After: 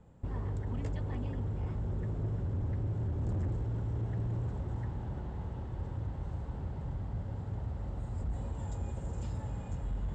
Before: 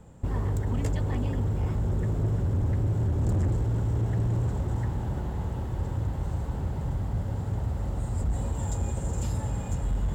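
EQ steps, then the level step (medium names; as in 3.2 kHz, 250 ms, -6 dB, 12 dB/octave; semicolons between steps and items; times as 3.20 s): distance through air 99 m; -8.0 dB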